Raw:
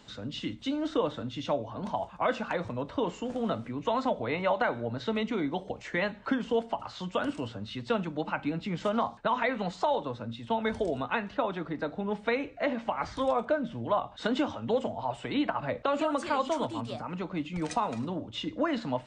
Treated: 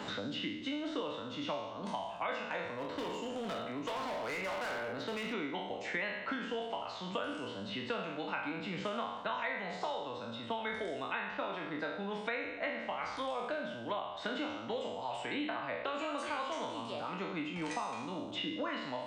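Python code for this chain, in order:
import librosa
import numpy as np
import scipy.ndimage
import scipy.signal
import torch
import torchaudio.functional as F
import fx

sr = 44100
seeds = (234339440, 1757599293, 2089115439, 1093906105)

y = fx.spec_trails(x, sr, decay_s=0.83)
y = fx.low_shelf(y, sr, hz=150.0, db=-8.5)
y = fx.comb_fb(y, sr, f0_hz=98.0, decay_s=0.2, harmonics='all', damping=0.0, mix_pct=50)
y = fx.dynamic_eq(y, sr, hz=2400.0, q=0.93, threshold_db=-48.0, ratio=4.0, max_db=7)
y = fx.clip_hard(y, sr, threshold_db=-31.5, at=(2.75, 5.32), fade=0.02)
y = fx.band_squash(y, sr, depth_pct=100)
y = y * 10.0 ** (-8.5 / 20.0)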